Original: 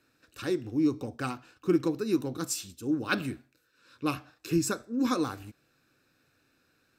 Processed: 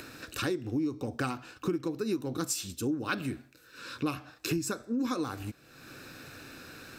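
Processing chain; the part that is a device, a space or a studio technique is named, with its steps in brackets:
upward and downward compression (upward compression, threshold −43 dBFS; downward compressor 8 to 1, threshold −37 dBFS, peak gain reduction 17.5 dB)
level +8.5 dB

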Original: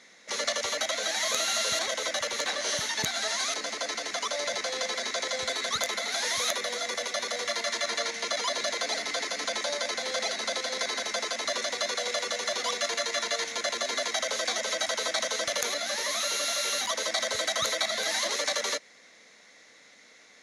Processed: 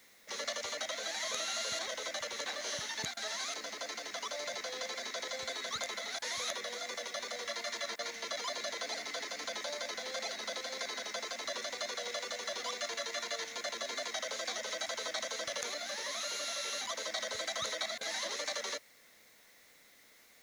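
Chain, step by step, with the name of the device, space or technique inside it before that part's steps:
worn cassette (low-pass filter 9,000 Hz 12 dB per octave; tape wow and flutter 26 cents; tape dropouts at 0:03.14/0:06.19/0:07.96/0:17.98, 28 ms −19 dB; white noise bed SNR 26 dB)
level −8.5 dB

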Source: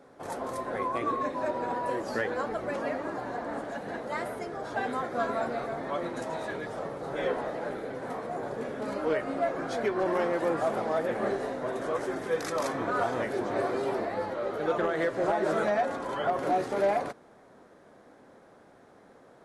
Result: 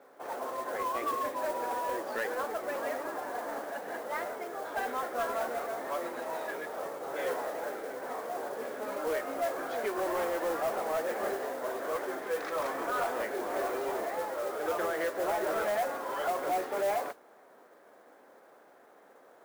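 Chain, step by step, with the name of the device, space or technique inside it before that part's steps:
carbon microphone (band-pass filter 420–2,900 Hz; soft clipping −24.5 dBFS, distortion −16 dB; noise that follows the level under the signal 17 dB)

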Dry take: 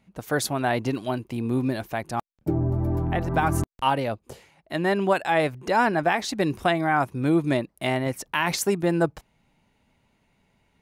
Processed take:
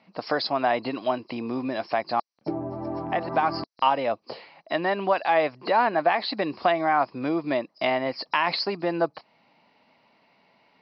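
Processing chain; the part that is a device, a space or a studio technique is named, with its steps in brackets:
hearing aid with frequency lowering (hearing-aid frequency compression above 3,900 Hz 4 to 1; downward compressor 2 to 1, threshold −33 dBFS, peak gain reduction 9.5 dB; loudspeaker in its box 320–6,100 Hz, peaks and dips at 390 Hz −5 dB, 670 Hz +3 dB, 1,100 Hz +4 dB, 1,500 Hz −4 dB, 3,600 Hz −4 dB, 5,400 Hz −8 dB)
level +8 dB

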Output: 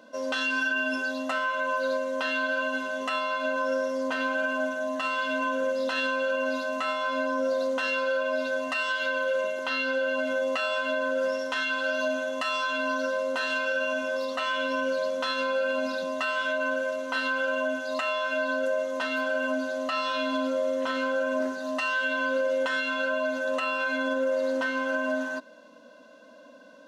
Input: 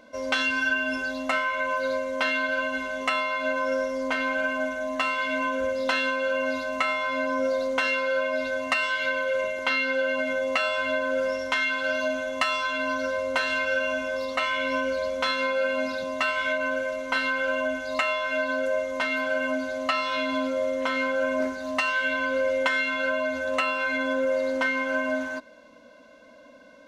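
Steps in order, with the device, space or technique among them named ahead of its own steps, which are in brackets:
PA system with an anti-feedback notch (high-pass filter 160 Hz 24 dB per octave; Butterworth band-reject 2,200 Hz, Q 6.2; brickwall limiter −19 dBFS, peak gain reduction 8 dB)

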